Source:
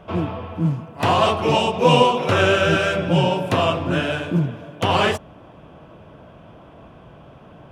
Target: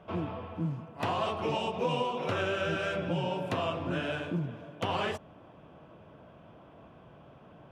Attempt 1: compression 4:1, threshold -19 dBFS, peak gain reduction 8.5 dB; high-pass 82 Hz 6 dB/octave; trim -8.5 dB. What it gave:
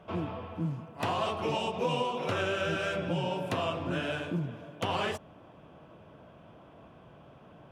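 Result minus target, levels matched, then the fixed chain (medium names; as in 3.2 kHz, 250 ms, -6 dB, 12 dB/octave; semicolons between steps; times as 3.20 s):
8 kHz band +3.5 dB
compression 4:1, threshold -19 dBFS, peak gain reduction 8.5 dB; high-pass 82 Hz 6 dB/octave; treble shelf 6.1 kHz -7 dB; trim -8.5 dB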